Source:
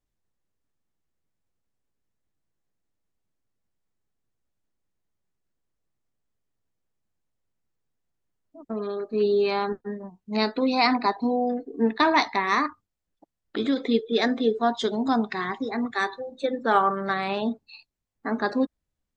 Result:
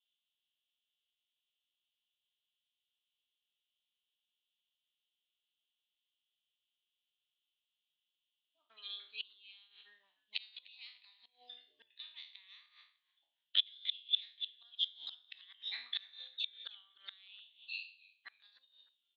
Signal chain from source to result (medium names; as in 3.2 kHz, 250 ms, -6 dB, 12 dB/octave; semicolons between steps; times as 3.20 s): spectral sustain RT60 0.44 s; inverted gate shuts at -16 dBFS, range -28 dB; Butterworth band-pass 3.2 kHz, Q 4.3; frequency-shifting echo 301 ms, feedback 34%, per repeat -130 Hz, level -22 dB; trim +13.5 dB